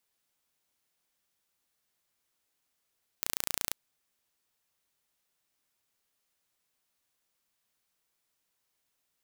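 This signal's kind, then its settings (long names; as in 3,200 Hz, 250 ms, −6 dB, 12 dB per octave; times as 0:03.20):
impulse train 28.8 per second, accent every 0, −3.5 dBFS 0.52 s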